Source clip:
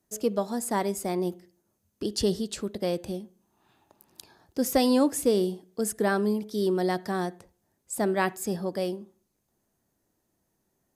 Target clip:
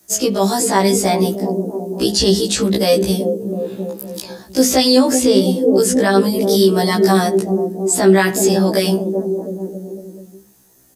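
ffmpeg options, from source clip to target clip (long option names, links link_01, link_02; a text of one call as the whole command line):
ffmpeg -i in.wav -filter_complex "[0:a]highshelf=frequency=3300:gain=11.5,bandreject=frequency=50:width_type=h:width=6,bandreject=frequency=100:width_type=h:width=6,bandreject=frequency=150:width_type=h:width=6,bandreject=frequency=200:width_type=h:width=6,bandreject=frequency=250:width_type=h:width=6,bandreject=frequency=300:width_type=h:width=6,bandreject=frequency=350:width_type=h:width=6,bandreject=frequency=400:width_type=h:width=6,acrossover=split=160|560|6700[link_01][link_02][link_03][link_04];[link_02]aecho=1:1:380|703|977.6|1211|1409:0.631|0.398|0.251|0.158|0.1[link_05];[link_04]acompressor=threshold=-42dB:ratio=6[link_06];[link_01][link_05][link_03][link_06]amix=inputs=4:normalize=0,alimiter=level_in=21dB:limit=-1dB:release=50:level=0:latency=1,afftfilt=real='re*1.73*eq(mod(b,3),0)':imag='im*1.73*eq(mod(b,3),0)':win_size=2048:overlap=0.75,volume=-2dB" out.wav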